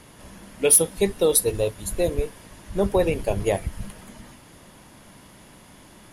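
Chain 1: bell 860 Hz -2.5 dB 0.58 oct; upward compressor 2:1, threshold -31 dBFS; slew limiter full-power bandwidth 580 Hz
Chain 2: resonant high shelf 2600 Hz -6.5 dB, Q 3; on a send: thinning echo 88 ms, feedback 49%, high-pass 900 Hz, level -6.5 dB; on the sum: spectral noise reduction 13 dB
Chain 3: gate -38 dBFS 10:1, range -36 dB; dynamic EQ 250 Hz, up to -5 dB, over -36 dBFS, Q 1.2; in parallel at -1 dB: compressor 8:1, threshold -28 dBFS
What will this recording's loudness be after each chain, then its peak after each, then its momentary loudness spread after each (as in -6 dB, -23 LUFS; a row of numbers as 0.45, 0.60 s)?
-24.5, -23.5, -20.5 LUFS; -9.5, -9.5, -4.5 dBFS; 20, 13, 16 LU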